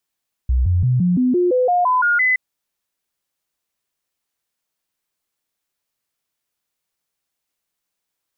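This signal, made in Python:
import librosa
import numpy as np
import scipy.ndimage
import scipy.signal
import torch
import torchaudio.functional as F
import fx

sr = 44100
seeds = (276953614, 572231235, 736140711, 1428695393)

y = fx.stepped_sweep(sr, from_hz=63.0, direction='up', per_octave=2, tones=11, dwell_s=0.17, gap_s=0.0, level_db=-13.0)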